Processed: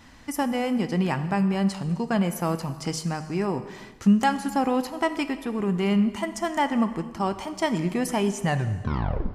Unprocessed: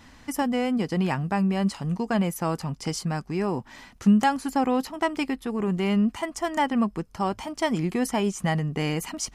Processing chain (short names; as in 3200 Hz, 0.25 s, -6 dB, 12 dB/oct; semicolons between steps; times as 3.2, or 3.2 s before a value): tape stop at the end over 0.89 s; non-linear reverb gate 0.48 s falling, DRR 10 dB